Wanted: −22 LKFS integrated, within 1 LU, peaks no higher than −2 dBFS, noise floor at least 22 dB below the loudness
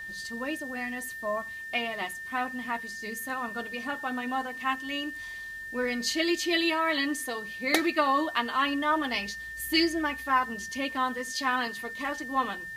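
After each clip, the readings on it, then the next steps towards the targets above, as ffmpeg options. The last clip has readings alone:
interfering tone 1,800 Hz; level of the tone −37 dBFS; integrated loudness −29.5 LKFS; sample peak −7.5 dBFS; target loudness −22.0 LKFS
→ -af "bandreject=frequency=1800:width=30"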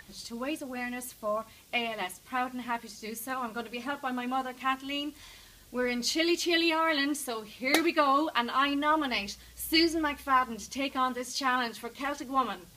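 interfering tone none found; integrated loudness −30.0 LKFS; sample peak −8.0 dBFS; target loudness −22.0 LKFS
→ -af "volume=8dB,alimiter=limit=-2dB:level=0:latency=1"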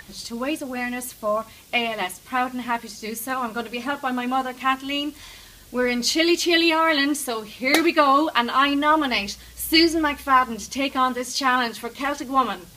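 integrated loudness −22.0 LKFS; sample peak −2.0 dBFS; background noise floor −46 dBFS

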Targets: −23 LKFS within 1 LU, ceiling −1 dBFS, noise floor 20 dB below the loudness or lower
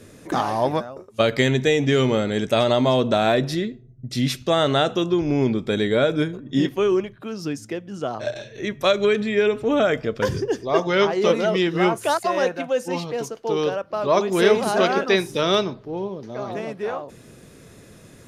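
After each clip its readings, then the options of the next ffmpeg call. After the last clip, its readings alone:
integrated loudness −22.0 LKFS; sample peak −5.0 dBFS; target loudness −23.0 LKFS
→ -af "volume=-1dB"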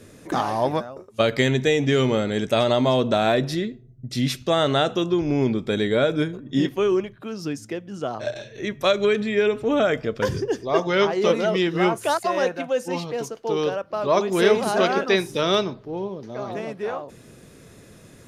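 integrated loudness −23.0 LKFS; sample peak −6.0 dBFS; background noise floor −48 dBFS

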